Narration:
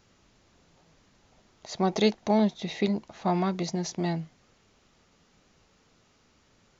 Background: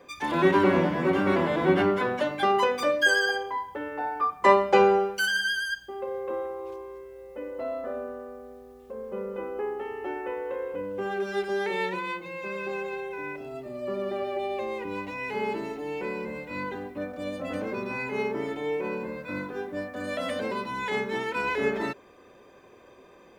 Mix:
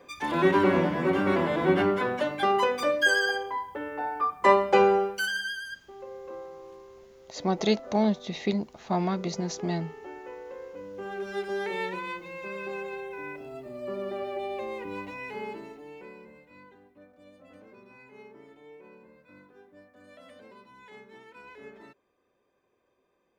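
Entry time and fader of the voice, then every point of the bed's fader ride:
5.65 s, -1.0 dB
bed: 5.06 s -1 dB
5.72 s -9 dB
10.72 s -9 dB
11.47 s -3 dB
15.04 s -3 dB
16.74 s -20.5 dB

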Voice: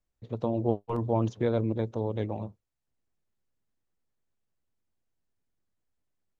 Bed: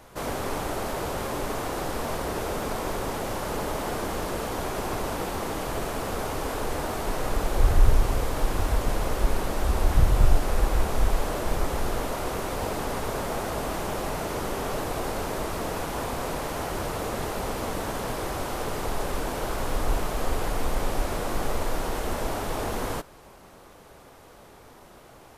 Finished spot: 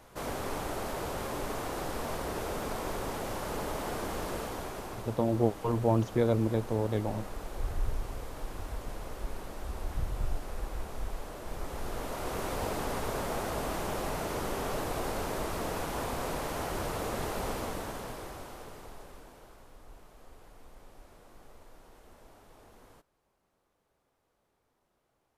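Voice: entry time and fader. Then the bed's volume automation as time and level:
4.75 s, +0.5 dB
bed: 4.36 s -5.5 dB
5.16 s -14 dB
11.39 s -14 dB
12.45 s -4 dB
17.51 s -4 dB
19.72 s -27 dB

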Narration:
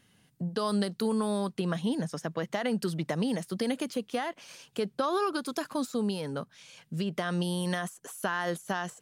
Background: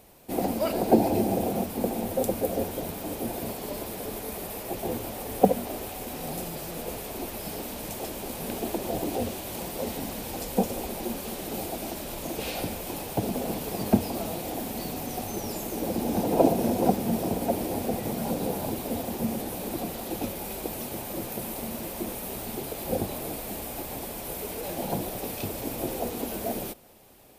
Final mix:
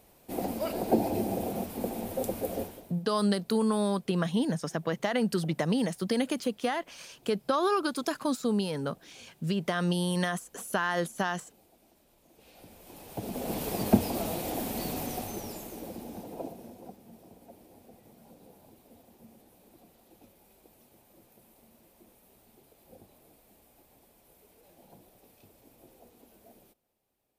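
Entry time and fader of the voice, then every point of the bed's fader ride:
2.50 s, +2.0 dB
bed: 2.60 s -5.5 dB
3.05 s -29.5 dB
12.26 s -29.5 dB
13.61 s -0.5 dB
15.02 s -0.5 dB
16.97 s -26 dB

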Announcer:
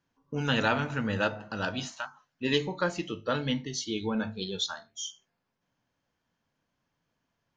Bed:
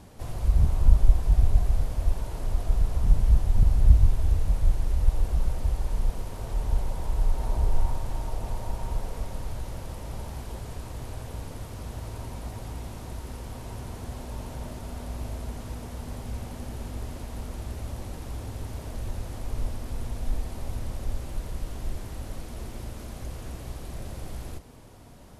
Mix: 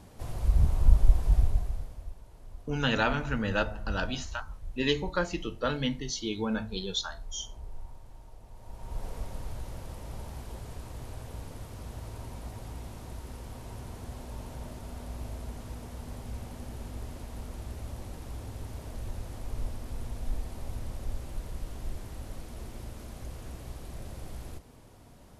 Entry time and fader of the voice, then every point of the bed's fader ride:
2.35 s, -0.5 dB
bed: 1.36 s -2.5 dB
2.17 s -19 dB
8.50 s -19 dB
9.06 s -4.5 dB

